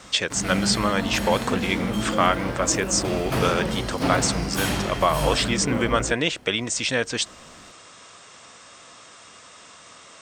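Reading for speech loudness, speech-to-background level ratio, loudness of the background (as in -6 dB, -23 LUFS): -24.0 LUFS, 3.5 dB, -27.5 LUFS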